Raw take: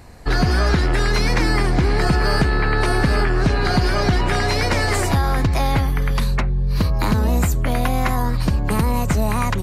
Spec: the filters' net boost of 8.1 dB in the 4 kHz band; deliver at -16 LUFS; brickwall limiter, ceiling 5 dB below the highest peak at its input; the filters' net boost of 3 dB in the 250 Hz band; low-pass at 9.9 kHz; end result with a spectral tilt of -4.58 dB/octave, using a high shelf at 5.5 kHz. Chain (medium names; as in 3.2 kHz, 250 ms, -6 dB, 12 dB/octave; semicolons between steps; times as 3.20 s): low-pass 9.9 kHz; peaking EQ 250 Hz +4 dB; peaking EQ 4 kHz +6 dB; treble shelf 5.5 kHz +8.5 dB; trim +3 dB; peak limiter -6 dBFS